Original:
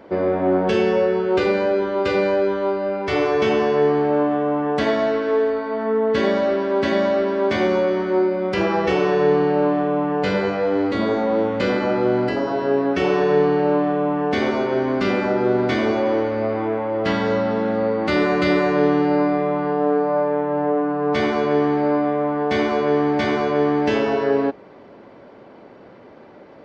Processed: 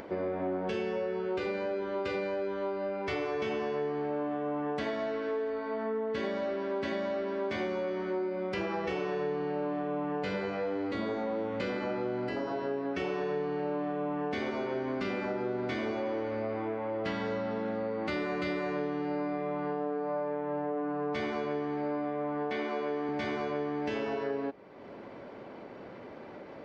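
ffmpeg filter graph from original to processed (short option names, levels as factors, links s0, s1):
-filter_complex "[0:a]asettb=1/sr,asplit=3[s0][s1][s2];[s0]atrim=end=22.504[s3];[s1]atrim=start=22.5:end=23.09,asetpts=PTS-STARTPTS,afade=t=in:d=0.004:c=qsin,afade=t=out:st=0.586:d=0.004:c=qsin,highpass=210,acrossover=split=4700[s4][s5];[s5]acompressor=threshold=0.00224:ratio=4:attack=1:release=60[s6];[s4][s6]amix=inputs=2:normalize=0[s7];[s2]atrim=start=23.086[s8];[s3][s7]acrossfade=d=0.004:c1=hsin:c2=qsin[s9];[s9][s8]acrossfade=d=0.004:c1=qsin:c2=hsin,acompressor=mode=upward:threshold=0.0355:ratio=2.5,equalizer=f=2300:t=o:w=0.58:g=2.5,acompressor=threshold=0.0794:ratio=4,volume=0.376"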